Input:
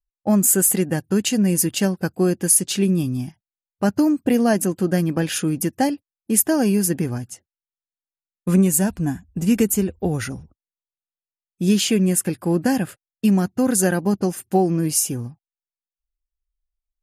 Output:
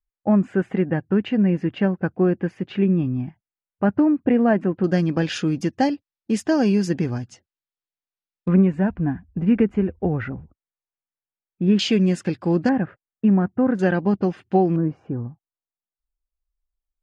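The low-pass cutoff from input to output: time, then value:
low-pass 24 dB/octave
2.3 kHz
from 4.84 s 5.3 kHz
from 8.48 s 2.2 kHz
from 11.79 s 5 kHz
from 12.69 s 1.9 kHz
from 13.79 s 3.5 kHz
from 14.76 s 1.4 kHz

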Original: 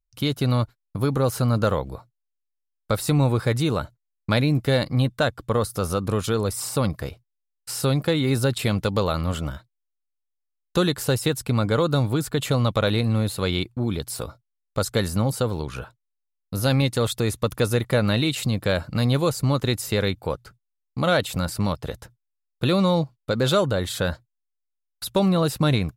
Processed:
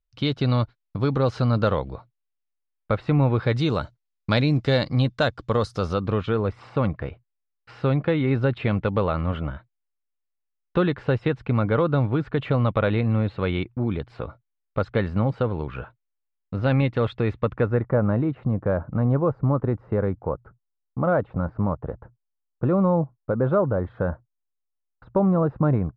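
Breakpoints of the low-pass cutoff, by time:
low-pass 24 dB/octave
1.61 s 4.4 kHz
3.20 s 2.5 kHz
3.73 s 5.8 kHz
5.70 s 5.8 kHz
6.34 s 2.6 kHz
17.39 s 2.6 kHz
17.97 s 1.3 kHz

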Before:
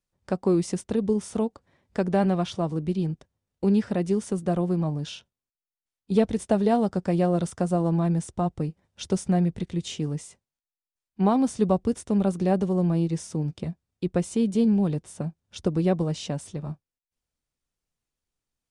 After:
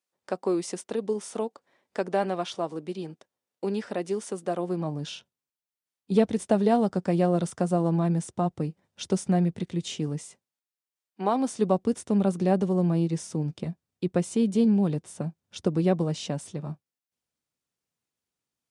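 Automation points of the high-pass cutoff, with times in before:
4.57 s 370 Hz
5.10 s 130 Hz
10.14 s 130 Hz
11.25 s 400 Hz
12.03 s 120 Hz

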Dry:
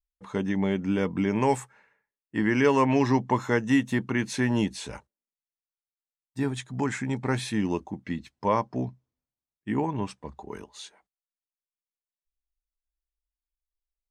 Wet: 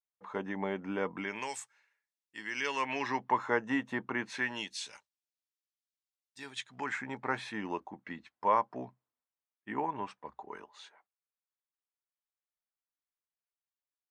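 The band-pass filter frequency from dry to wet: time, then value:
band-pass filter, Q 0.95
1.12 s 1 kHz
1.53 s 5.5 kHz
2.42 s 5.5 kHz
3.51 s 1 kHz
4.21 s 1 kHz
4.75 s 4.6 kHz
6.41 s 4.6 kHz
7.03 s 1.2 kHz

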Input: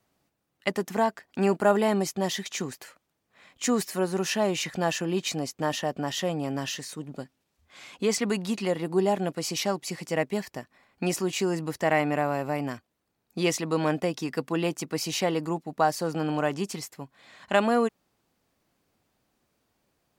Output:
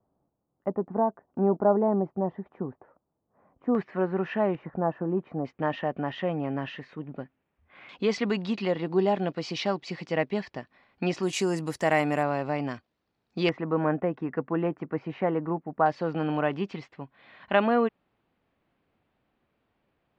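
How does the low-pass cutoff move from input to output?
low-pass 24 dB/octave
1 kHz
from 3.75 s 2.1 kHz
from 4.55 s 1.2 kHz
from 5.45 s 2.5 kHz
from 7.89 s 4.3 kHz
from 11.23 s 11 kHz
from 12.23 s 4.9 kHz
from 13.49 s 1.8 kHz
from 15.86 s 3.2 kHz

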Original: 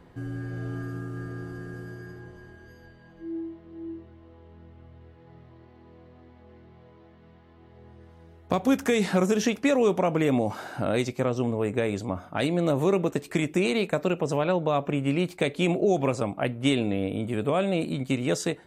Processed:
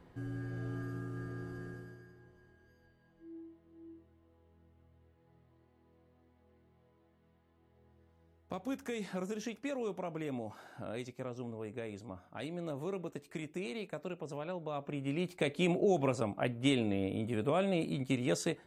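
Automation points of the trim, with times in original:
1.67 s -6.5 dB
2.10 s -16 dB
14.60 s -16 dB
15.51 s -6.5 dB

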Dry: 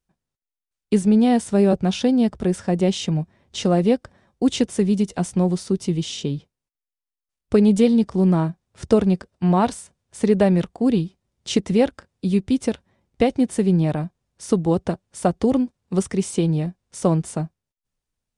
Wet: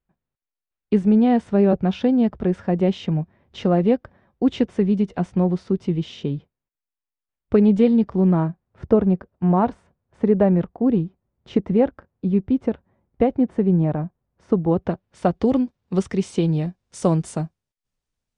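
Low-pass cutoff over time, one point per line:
8.16 s 2.3 kHz
8.91 s 1.4 kHz
14.57 s 1.4 kHz
14.87 s 2.5 kHz
15.58 s 4.7 kHz
16.49 s 4.7 kHz
17.04 s 8.7 kHz

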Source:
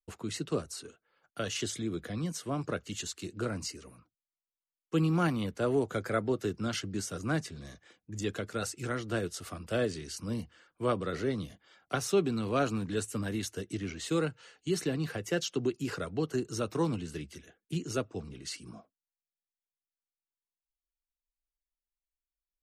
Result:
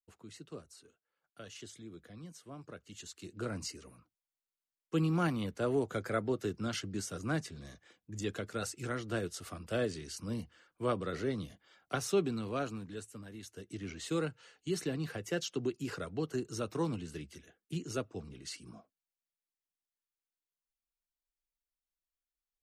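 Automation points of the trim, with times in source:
2.74 s -14.5 dB
3.55 s -3 dB
12.22 s -3 dB
13.31 s -15 dB
13.92 s -4 dB

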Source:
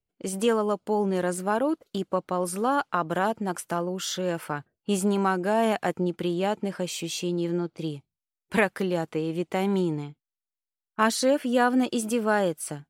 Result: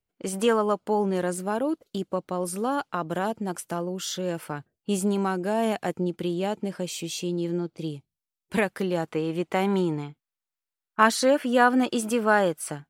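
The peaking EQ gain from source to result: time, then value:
peaking EQ 1.3 kHz 2 oct
0.88 s +4 dB
1.47 s -4.5 dB
8.60 s -4.5 dB
9.23 s +5 dB

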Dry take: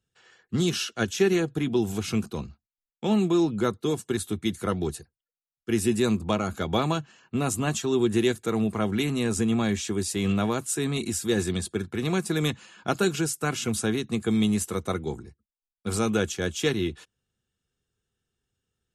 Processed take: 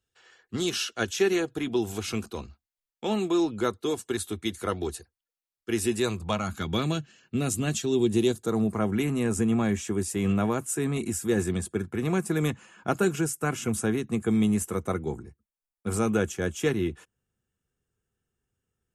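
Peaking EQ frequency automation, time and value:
peaking EQ -12 dB 0.89 oct
5.96 s 160 Hz
6.90 s 960 Hz
7.77 s 960 Hz
8.91 s 4.1 kHz

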